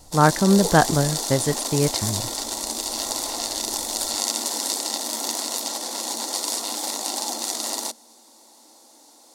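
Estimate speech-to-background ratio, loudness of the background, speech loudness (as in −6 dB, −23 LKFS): 4.0 dB, −25.0 LKFS, −21.0 LKFS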